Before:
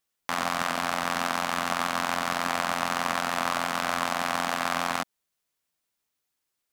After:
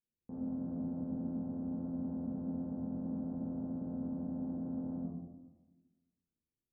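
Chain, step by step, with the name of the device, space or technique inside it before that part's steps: next room (low-pass 350 Hz 24 dB/octave; reverberation RT60 1.1 s, pre-delay 3 ms, DRR -7 dB); trim -6 dB

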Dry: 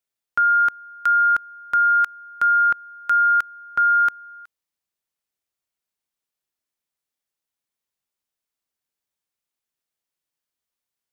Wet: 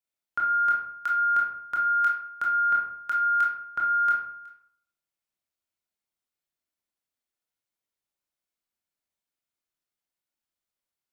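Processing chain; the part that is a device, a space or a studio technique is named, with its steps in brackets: bathroom (reverberation RT60 0.70 s, pre-delay 20 ms, DRR -2.5 dB); trim -7.5 dB

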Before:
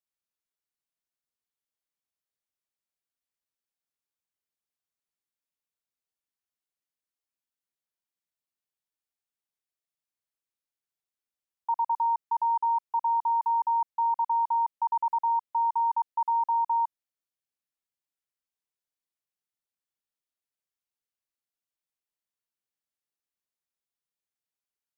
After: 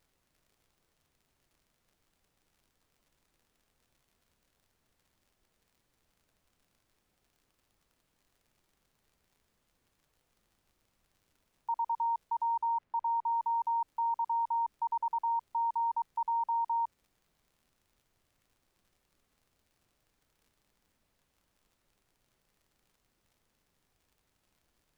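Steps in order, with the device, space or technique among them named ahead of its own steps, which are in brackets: vinyl LP (crackle; pink noise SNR 38 dB); 12.68–13.33 s: tone controls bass 0 dB, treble -14 dB; trim -5.5 dB

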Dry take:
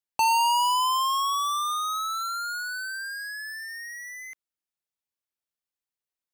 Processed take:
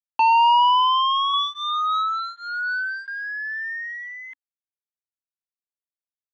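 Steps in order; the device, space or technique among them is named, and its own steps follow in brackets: blown loudspeaker (crossover distortion -51 dBFS; cabinet simulation 190–3600 Hz, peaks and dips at 280 Hz +6 dB, 630 Hz -9 dB, 960 Hz +8 dB, 1.8 kHz +10 dB, 3.3 kHz +10 dB); 1.33–3.08 s: comb 4.7 ms, depth 98%

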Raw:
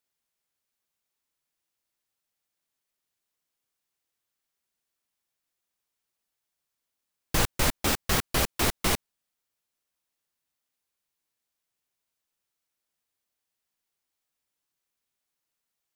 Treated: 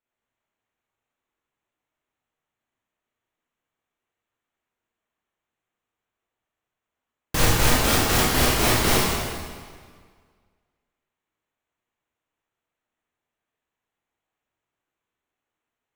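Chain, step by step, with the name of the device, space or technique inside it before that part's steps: local Wiener filter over 9 samples; stairwell (reverberation RT60 1.8 s, pre-delay 17 ms, DRR -6.5 dB)

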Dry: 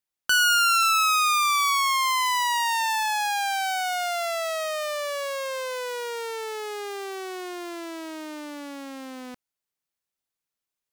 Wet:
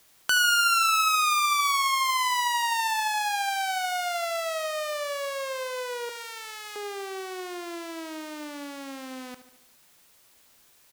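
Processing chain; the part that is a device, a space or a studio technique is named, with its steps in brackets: 6.09–6.76 s: high-pass 1.3 kHz 12 dB/octave; noise-reduction cassette on a plain deck (tape noise reduction on one side only encoder only; wow and flutter 8.1 cents; white noise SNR 31 dB); feedback delay 73 ms, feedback 56%, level -13 dB; trim -2 dB

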